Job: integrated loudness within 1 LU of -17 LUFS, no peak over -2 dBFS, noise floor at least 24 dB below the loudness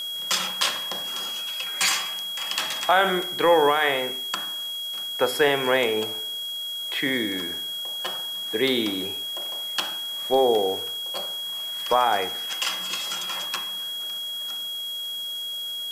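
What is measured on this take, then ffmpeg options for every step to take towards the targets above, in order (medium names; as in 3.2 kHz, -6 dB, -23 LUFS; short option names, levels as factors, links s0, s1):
steady tone 3.3 kHz; tone level -29 dBFS; noise floor -32 dBFS; noise floor target -49 dBFS; loudness -24.5 LUFS; peak level -6.5 dBFS; loudness target -17.0 LUFS
-> -af "bandreject=f=3300:w=30"
-af "afftdn=nr=17:nf=-32"
-af "volume=2.37,alimiter=limit=0.794:level=0:latency=1"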